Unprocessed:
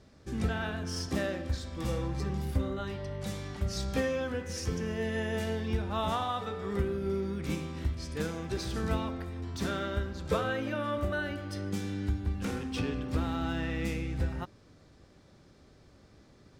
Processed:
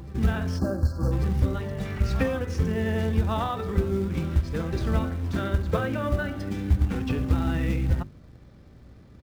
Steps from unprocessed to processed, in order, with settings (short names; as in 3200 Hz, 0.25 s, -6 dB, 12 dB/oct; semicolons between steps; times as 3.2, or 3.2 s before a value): tempo 1.8×; spectral gain 1.85–2.22, 1200–3000 Hz +7 dB; tone controls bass +7 dB, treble -9 dB; reverse echo 1.146 s -15 dB; hum 60 Hz, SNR 29 dB; notches 50/100/150/200/250/300/350/400 Hz; in parallel at -5.5 dB: short-mantissa float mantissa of 2-bit; on the sum: spectral gain 0.59–1.12, 1700–4100 Hz -26 dB